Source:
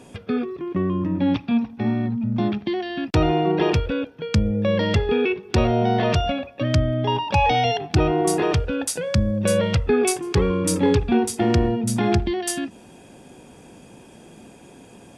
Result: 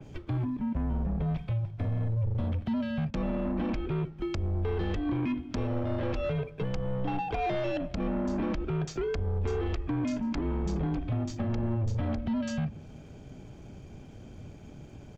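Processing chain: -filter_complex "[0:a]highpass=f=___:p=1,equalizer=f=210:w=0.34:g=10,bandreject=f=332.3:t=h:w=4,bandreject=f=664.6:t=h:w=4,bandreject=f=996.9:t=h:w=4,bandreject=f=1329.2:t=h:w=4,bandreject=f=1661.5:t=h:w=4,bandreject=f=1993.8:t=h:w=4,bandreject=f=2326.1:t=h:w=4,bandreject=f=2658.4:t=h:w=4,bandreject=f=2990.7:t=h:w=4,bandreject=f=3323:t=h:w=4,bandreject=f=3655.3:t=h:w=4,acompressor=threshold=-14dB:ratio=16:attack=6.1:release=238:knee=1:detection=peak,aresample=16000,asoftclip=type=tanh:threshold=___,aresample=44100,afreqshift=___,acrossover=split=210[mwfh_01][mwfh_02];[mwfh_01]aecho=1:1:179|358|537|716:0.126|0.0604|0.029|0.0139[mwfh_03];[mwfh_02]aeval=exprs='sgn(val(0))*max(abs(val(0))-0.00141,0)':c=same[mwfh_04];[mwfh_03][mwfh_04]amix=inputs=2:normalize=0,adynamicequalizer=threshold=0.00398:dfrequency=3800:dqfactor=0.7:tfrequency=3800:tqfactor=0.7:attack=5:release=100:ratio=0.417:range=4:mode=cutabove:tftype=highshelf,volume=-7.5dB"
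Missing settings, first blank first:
100, -17.5dB, -120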